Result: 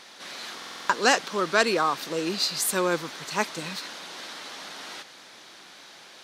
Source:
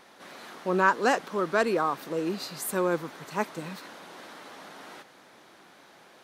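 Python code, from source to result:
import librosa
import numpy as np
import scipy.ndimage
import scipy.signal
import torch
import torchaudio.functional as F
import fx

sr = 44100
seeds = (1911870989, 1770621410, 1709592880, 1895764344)

y = fx.peak_eq(x, sr, hz=4800.0, db=13.5, octaves=2.5)
y = fx.buffer_glitch(y, sr, at_s=(0.57,), block=2048, repeats=6)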